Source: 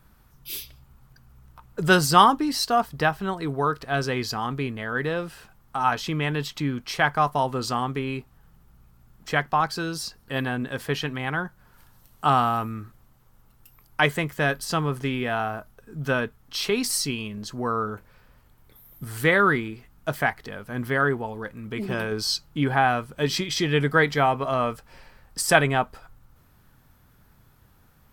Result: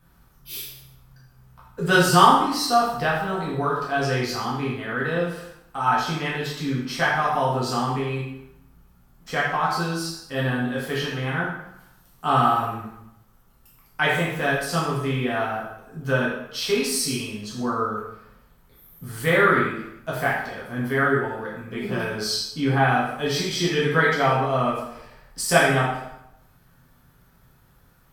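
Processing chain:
dense smooth reverb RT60 0.81 s, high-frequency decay 0.85×, DRR −6.5 dB
level −6 dB

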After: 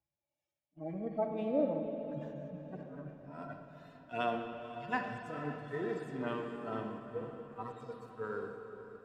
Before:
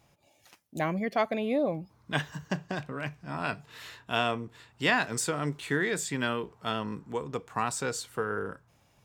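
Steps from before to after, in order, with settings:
harmonic-percussive split with one part muted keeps harmonic
parametric band 130 Hz −7.5 dB 1.4 octaves
feedback delay with all-pass diffusion 508 ms, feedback 59%, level −9.5 dB
in parallel at −7.5 dB: slack as between gear wheels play −38.5 dBFS
on the sum: high-shelf EQ 2,100 Hz −10.5 dB
on a send at −3.5 dB: convolution reverb RT60 3.3 s, pre-delay 42 ms
on the sum: multiband upward and downward expander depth 40%
level −7.5 dB

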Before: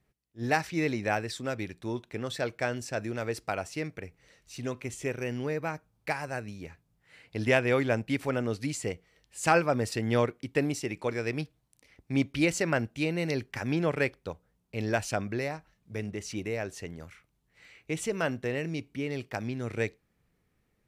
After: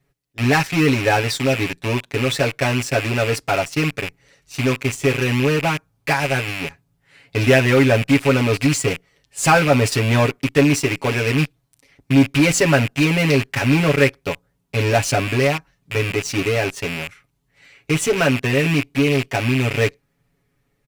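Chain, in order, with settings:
loose part that buzzes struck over −43 dBFS, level −28 dBFS
in parallel at −12 dB: fuzz pedal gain 34 dB, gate −41 dBFS
on the sum: comb filter 7.2 ms, depth 96%
level +3.5 dB

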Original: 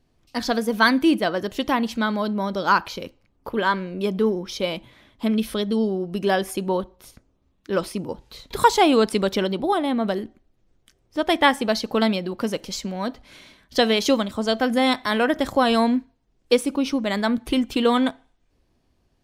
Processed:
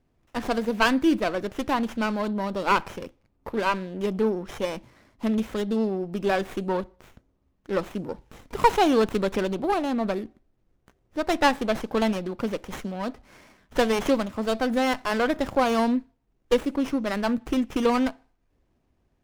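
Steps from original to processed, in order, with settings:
windowed peak hold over 9 samples
level −2.5 dB

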